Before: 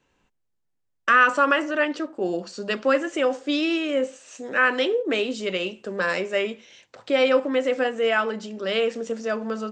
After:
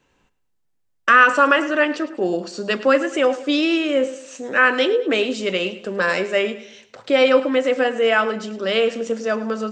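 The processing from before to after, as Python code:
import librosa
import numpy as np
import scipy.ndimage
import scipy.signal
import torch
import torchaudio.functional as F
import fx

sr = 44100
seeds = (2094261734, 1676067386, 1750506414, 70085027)

y = fx.echo_feedback(x, sr, ms=106, feedback_pct=41, wet_db=-16)
y = y * 10.0 ** (4.5 / 20.0)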